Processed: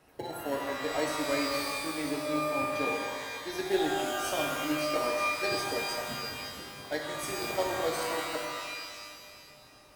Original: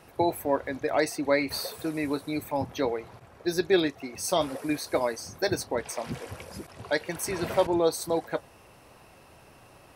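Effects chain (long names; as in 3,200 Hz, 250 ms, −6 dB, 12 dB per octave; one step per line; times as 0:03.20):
parametric band 89 Hz −7 dB 1.1 octaves
notch comb filter 170 Hz
in parallel at −10 dB: decimation without filtering 36×
on the sum: reverb with rising layers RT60 1.8 s, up +12 semitones, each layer −2 dB, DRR 0.5 dB
level −8 dB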